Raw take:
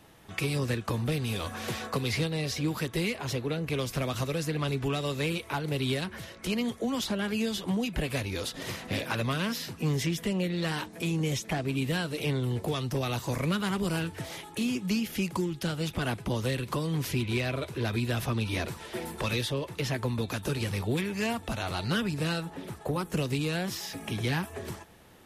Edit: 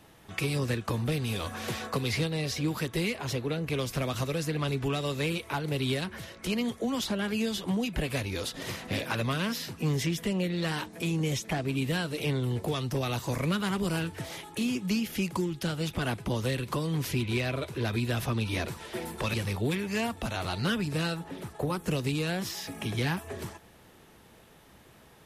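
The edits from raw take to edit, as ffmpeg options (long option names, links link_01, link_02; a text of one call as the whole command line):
ffmpeg -i in.wav -filter_complex "[0:a]asplit=2[link_01][link_02];[link_01]atrim=end=19.342[link_03];[link_02]atrim=start=20.598[link_04];[link_03][link_04]acrossfade=duration=0.004:curve1=hsin:curve2=hsin" out.wav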